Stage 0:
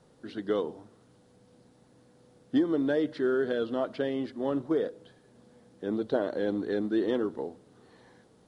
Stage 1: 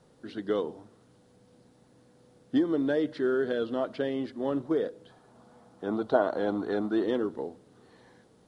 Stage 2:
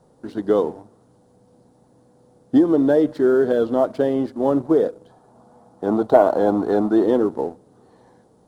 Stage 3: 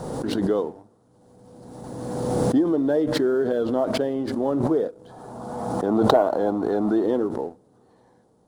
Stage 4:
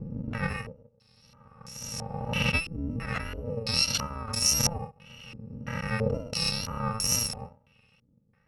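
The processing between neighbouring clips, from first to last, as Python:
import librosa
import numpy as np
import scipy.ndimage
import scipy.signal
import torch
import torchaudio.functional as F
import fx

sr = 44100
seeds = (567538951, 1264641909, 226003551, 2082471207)

y1 = fx.spec_box(x, sr, start_s=5.1, length_s=1.93, low_hz=610.0, high_hz=1500.0, gain_db=9)
y2 = fx.peak_eq(y1, sr, hz=840.0, db=6.5, octaves=1.1)
y2 = fx.leveller(y2, sr, passes=1)
y2 = fx.peak_eq(y2, sr, hz=2500.0, db=-11.5, octaves=2.1)
y2 = y2 * 10.0 ** (6.5 / 20.0)
y3 = fx.pre_swell(y2, sr, db_per_s=29.0)
y3 = y3 * 10.0 ** (-5.5 / 20.0)
y4 = fx.bit_reversed(y3, sr, seeds[0], block=128)
y4 = fx.wow_flutter(y4, sr, seeds[1], rate_hz=2.1, depth_cents=55.0)
y4 = fx.filter_held_lowpass(y4, sr, hz=3.0, low_hz=320.0, high_hz=6700.0)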